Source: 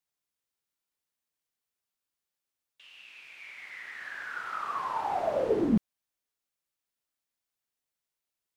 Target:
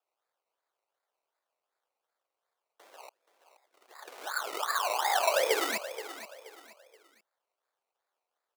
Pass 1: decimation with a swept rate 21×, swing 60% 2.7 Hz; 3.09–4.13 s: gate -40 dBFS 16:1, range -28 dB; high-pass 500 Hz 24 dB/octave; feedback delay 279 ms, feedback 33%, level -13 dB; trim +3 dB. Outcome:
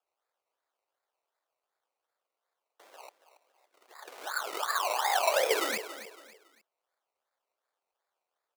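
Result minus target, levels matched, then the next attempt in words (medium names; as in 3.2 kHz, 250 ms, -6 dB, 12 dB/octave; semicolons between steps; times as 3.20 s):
echo 198 ms early
decimation with a swept rate 21×, swing 60% 2.7 Hz; 3.09–4.13 s: gate -40 dBFS 16:1, range -28 dB; high-pass 500 Hz 24 dB/octave; feedback delay 477 ms, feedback 33%, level -13 dB; trim +3 dB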